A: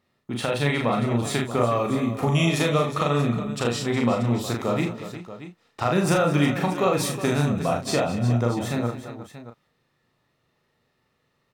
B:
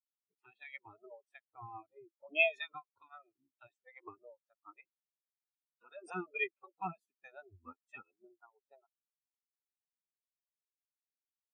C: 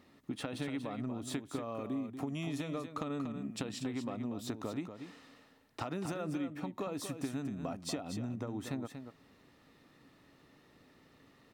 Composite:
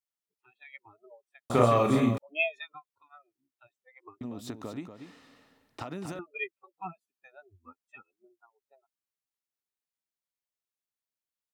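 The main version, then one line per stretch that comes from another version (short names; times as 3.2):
B
1.5–2.18 from A
4.21–6.19 from C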